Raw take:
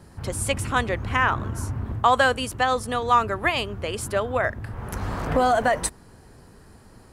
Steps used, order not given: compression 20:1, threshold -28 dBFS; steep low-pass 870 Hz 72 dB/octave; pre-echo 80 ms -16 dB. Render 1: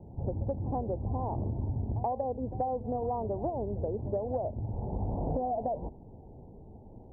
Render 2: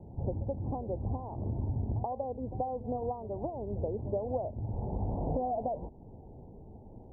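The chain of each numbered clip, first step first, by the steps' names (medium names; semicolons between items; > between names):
steep low-pass > compression > pre-echo; compression > steep low-pass > pre-echo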